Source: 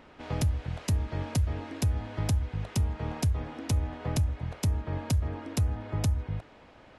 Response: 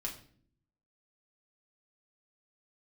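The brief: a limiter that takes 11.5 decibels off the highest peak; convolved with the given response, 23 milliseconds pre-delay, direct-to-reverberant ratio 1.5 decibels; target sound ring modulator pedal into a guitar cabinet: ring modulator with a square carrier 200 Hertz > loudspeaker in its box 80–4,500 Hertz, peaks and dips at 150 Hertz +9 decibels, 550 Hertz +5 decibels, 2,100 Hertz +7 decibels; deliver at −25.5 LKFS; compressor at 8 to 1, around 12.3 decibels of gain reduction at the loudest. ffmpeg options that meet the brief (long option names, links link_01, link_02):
-filter_complex "[0:a]acompressor=threshold=-35dB:ratio=8,alimiter=level_in=10.5dB:limit=-24dB:level=0:latency=1,volume=-10.5dB,asplit=2[link_01][link_02];[1:a]atrim=start_sample=2205,adelay=23[link_03];[link_02][link_03]afir=irnorm=-1:irlink=0,volume=-1.5dB[link_04];[link_01][link_04]amix=inputs=2:normalize=0,aeval=exprs='val(0)*sgn(sin(2*PI*200*n/s))':channel_layout=same,highpass=80,equalizer=frequency=150:width_type=q:width=4:gain=9,equalizer=frequency=550:width_type=q:width=4:gain=5,equalizer=frequency=2100:width_type=q:width=4:gain=7,lowpass=frequency=4500:width=0.5412,lowpass=frequency=4500:width=1.3066,volume=11dB"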